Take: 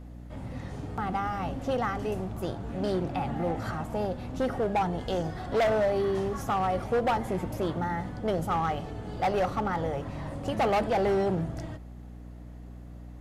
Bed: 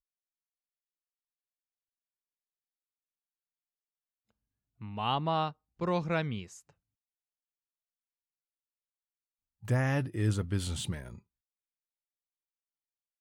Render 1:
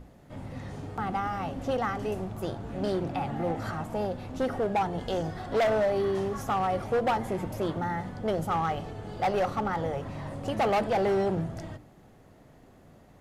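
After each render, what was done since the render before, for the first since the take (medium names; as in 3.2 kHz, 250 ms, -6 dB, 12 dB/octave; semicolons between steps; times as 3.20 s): hum notches 60/120/180/240/300 Hz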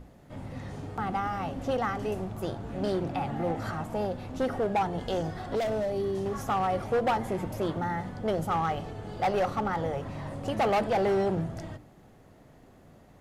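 5.55–6.26 s: peaking EQ 1.4 kHz -10 dB 2.4 oct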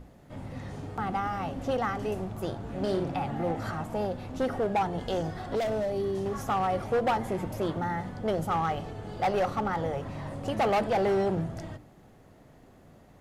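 2.72–3.20 s: flutter echo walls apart 9.7 m, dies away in 0.39 s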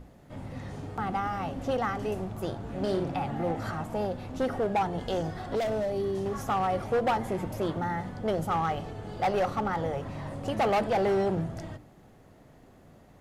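no audible change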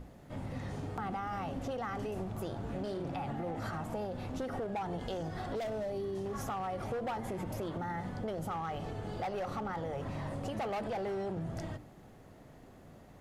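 peak limiter -26.5 dBFS, peak gain reduction 8 dB; compression, threshold -34 dBFS, peak gain reduction 5.5 dB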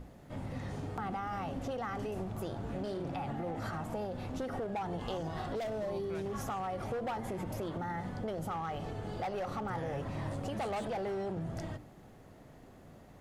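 add bed -16.5 dB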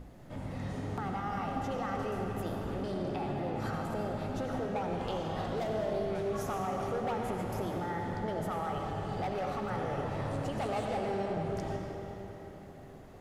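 algorithmic reverb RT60 4.3 s, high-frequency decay 0.75×, pre-delay 45 ms, DRR 0.5 dB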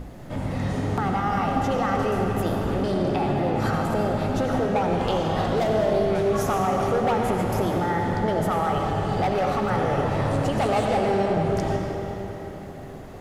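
trim +11.5 dB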